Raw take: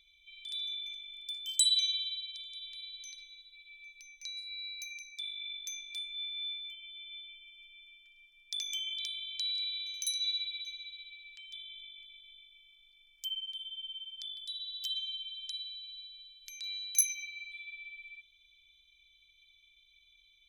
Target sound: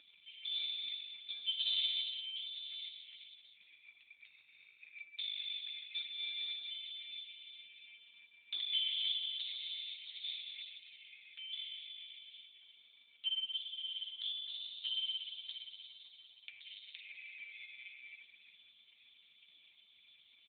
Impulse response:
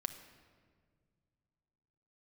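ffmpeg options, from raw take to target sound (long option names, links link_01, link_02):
-filter_complex "[0:a]asettb=1/sr,asplit=3[link_01][link_02][link_03];[link_01]atrim=end=3.524[link_04];[link_02]atrim=start=3.52:end=4.94,asetpts=PTS-STARTPTS,afade=type=in:duration=0.004:curve=qsin,afade=type=out:start_time=1.416:duration=0.004:curve=qsin,aeval=exprs='val(0)*sin(2*PI*25*n/s)':channel_layout=same[link_05];[link_03]atrim=start=4.936[link_06];[link_04][link_05]acrossfade=duration=0.004:curve1=hsin:curve2=qsin[link_07];[link_07][link_06]acrossfade=duration=0.004:curve1=qsin:curve2=hsin,asplit=3[link_08][link_09][link_10];[link_08]afade=type=out:start_time=12.49:duration=0.02[link_11];[link_09]highpass=56,afade=type=in:start_time=12.49:duration=0.02,afade=type=out:start_time=13.5:duration=0.02[link_12];[link_10]afade=type=in:start_time=13.5:duration=0.02[link_13];[link_11][link_12][link_13]amix=inputs=3:normalize=0,aecho=1:1:344|688:0.224|0.0425,asplit=2[link_14][link_15];[1:a]atrim=start_sample=2205[link_16];[link_15][link_16]afir=irnorm=-1:irlink=0,volume=-10dB[link_17];[link_14][link_17]amix=inputs=2:normalize=0,volume=4.5dB" -ar 8000 -c:a libopencore_amrnb -b:a 4750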